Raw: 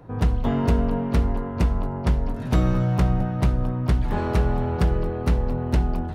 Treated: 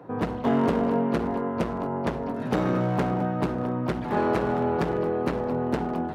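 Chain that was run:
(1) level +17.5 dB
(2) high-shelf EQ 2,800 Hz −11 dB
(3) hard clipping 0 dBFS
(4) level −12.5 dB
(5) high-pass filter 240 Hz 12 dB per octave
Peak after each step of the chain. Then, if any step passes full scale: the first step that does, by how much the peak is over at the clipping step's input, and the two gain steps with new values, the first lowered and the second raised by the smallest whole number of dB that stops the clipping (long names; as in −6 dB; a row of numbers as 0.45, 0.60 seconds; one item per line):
+9.0, +8.5, 0.0, −12.5, −11.0 dBFS
step 1, 8.5 dB
step 1 +8.5 dB, step 4 −3.5 dB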